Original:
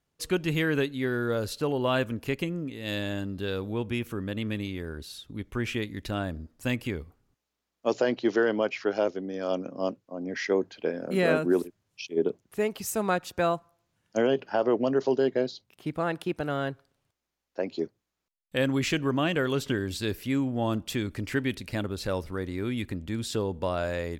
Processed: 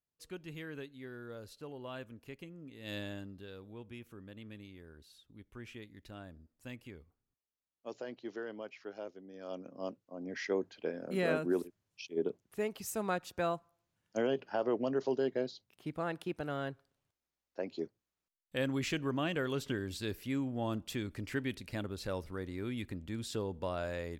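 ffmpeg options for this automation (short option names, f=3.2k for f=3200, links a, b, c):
-af "volume=1dB,afade=t=in:st=2.57:d=0.4:silence=0.334965,afade=t=out:st=2.97:d=0.5:silence=0.354813,afade=t=in:st=9.23:d=1.04:silence=0.316228"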